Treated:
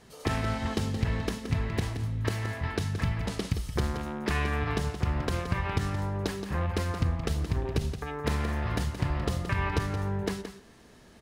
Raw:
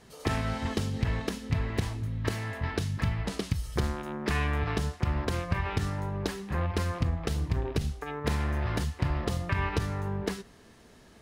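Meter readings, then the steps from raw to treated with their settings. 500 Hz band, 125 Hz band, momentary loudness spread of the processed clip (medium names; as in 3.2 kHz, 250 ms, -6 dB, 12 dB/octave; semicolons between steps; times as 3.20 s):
+0.5 dB, +0.5 dB, 3 LU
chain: delay 173 ms -9.5 dB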